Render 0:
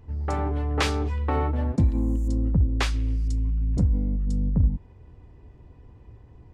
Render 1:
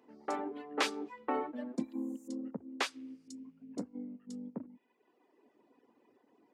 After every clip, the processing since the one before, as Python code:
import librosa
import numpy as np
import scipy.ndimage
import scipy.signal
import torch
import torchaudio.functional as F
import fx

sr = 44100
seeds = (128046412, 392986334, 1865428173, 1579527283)

y = fx.dereverb_blind(x, sr, rt60_s=1.3)
y = scipy.signal.sosfilt(scipy.signal.cheby1(4, 1.0, 240.0, 'highpass', fs=sr, output='sos'), y)
y = y * 10.0 ** (-5.0 / 20.0)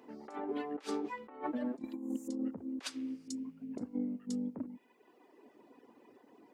y = fx.over_compress(x, sr, threshold_db=-41.0, ratio=-0.5)
y = y * 10.0 ** (4.0 / 20.0)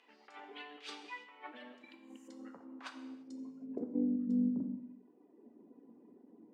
y = fx.rev_gated(x, sr, seeds[0], gate_ms=360, shape='falling', drr_db=5.5)
y = fx.filter_sweep_bandpass(y, sr, from_hz=2900.0, to_hz=220.0, start_s=1.78, end_s=4.48, q=1.8)
y = y * 10.0 ** (5.5 / 20.0)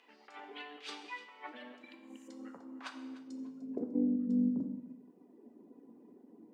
y = fx.echo_feedback(x, sr, ms=299, feedback_pct=23, wet_db=-17.5)
y = y * 10.0 ** (2.0 / 20.0)